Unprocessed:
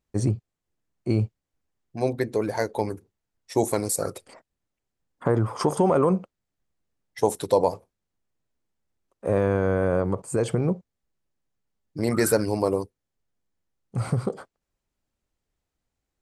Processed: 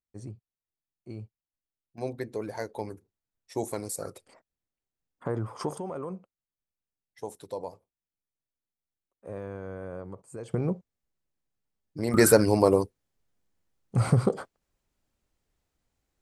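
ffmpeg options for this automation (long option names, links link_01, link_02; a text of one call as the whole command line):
ffmpeg -i in.wav -af "asetnsamples=nb_out_samples=441:pad=0,asendcmd='1.98 volume volume -9dB;5.78 volume volume -16dB;10.54 volume volume -4.5dB;12.14 volume volume 3dB',volume=-18dB" out.wav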